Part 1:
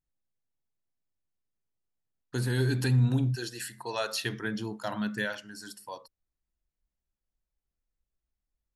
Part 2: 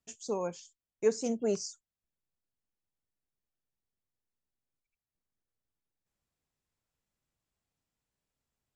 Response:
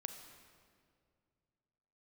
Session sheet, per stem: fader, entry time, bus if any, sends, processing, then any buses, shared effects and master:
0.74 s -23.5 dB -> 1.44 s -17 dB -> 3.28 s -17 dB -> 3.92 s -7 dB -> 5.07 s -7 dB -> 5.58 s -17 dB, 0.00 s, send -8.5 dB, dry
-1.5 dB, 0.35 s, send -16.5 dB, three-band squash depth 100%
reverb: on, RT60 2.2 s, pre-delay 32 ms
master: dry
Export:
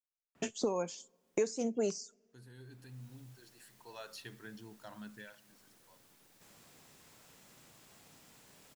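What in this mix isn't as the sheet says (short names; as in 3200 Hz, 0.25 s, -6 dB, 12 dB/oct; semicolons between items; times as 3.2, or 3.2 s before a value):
stem 1 -23.5 dB -> -34.0 dB; reverb return -6.5 dB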